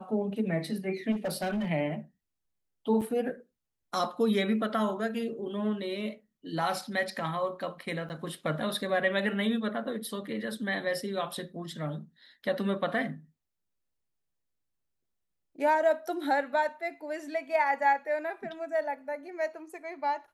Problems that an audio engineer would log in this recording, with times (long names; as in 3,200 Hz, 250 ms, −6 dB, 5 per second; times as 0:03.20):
0:01.11–0:01.71: clipping −27.5 dBFS
0:03.01–0:03.02: drop-out 5.6 ms
0:08.09–0:08.10: drop-out 9.1 ms